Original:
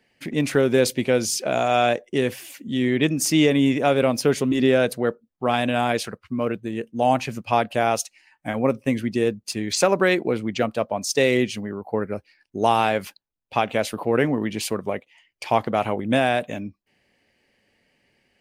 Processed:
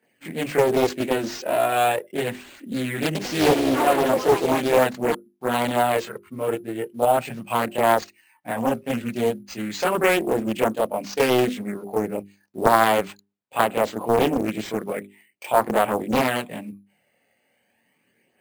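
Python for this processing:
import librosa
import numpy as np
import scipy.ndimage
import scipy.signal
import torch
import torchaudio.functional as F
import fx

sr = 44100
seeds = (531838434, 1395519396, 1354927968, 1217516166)

y = fx.block_float(x, sr, bits=7)
y = scipy.signal.sosfilt(scipy.signal.butter(2, 170.0, 'highpass', fs=sr, output='sos'), y)
y = fx.peak_eq(y, sr, hz=7300.0, db=-13.0, octaves=1.4)
y = fx.hum_notches(y, sr, base_hz=50, count=8)
y = fx.chorus_voices(y, sr, voices=2, hz=0.19, base_ms=25, depth_ms=1.6, mix_pct=65)
y = fx.echo_pitch(y, sr, ms=99, semitones=4, count=3, db_per_echo=-6.0, at=(3.05, 5.57))
y = np.repeat(y[::4], 4)[:len(y)]
y = fx.doppler_dist(y, sr, depth_ms=0.63)
y = y * 10.0 ** (3.5 / 20.0)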